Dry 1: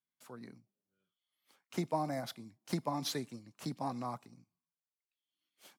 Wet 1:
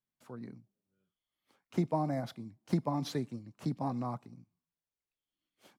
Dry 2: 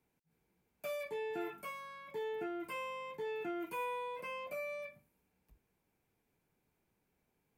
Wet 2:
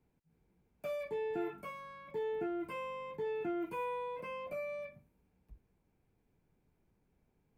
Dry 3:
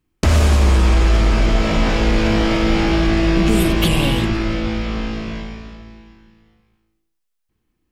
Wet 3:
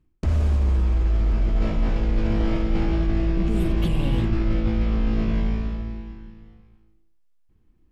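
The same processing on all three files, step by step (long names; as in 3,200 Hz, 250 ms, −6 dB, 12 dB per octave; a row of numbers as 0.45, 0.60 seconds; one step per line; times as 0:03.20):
spectral tilt −2.5 dB per octave
reversed playback
downward compressor 16 to 1, threshold −17 dBFS
reversed playback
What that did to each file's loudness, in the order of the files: +3.0, +1.5, −7.0 LU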